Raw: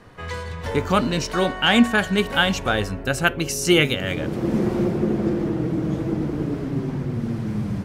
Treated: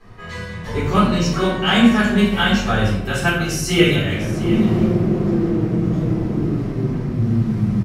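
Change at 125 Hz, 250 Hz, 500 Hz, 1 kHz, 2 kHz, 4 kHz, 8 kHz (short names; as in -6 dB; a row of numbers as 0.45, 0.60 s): +7.0, +5.0, +2.0, +2.0, +1.0, +1.0, +0.5 dB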